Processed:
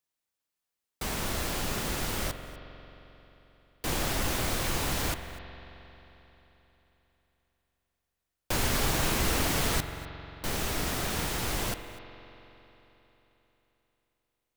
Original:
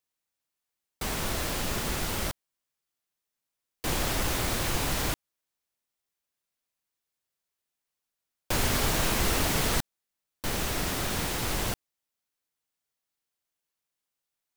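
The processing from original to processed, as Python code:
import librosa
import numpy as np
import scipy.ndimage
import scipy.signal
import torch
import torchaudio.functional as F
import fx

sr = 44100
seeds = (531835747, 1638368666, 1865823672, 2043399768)

y = x + 10.0 ** (-19.5 / 20.0) * np.pad(x, (int(247 * sr / 1000.0), 0))[:len(x)]
y = fx.rev_spring(y, sr, rt60_s=3.7, pass_ms=(44,), chirp_ms=30, drr_db=9.0)
y = F.gain(torch.from_numpy(y), -1.5).numpy()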